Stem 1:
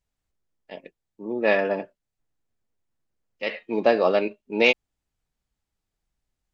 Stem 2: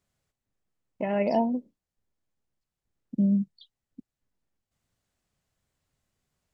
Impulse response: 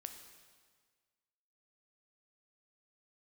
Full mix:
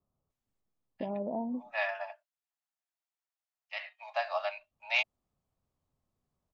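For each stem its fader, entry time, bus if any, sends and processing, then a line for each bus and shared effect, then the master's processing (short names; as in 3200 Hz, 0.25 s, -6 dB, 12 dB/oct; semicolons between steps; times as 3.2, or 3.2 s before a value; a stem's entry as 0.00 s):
-8.0 dB, 0.30 s, no send, steep high-pass 630 Hz 96 dB/oct
-2.5 dB, 0.00 s, muted 1.98–4.22, no send, steep low-pass 1300 Hz 96 dB/oct; bell 250 Hz +2.5 dB 0.32 oct; compressor 3:1, threshold -32 dBFS, peak gain reduction 10 dB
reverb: off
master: dry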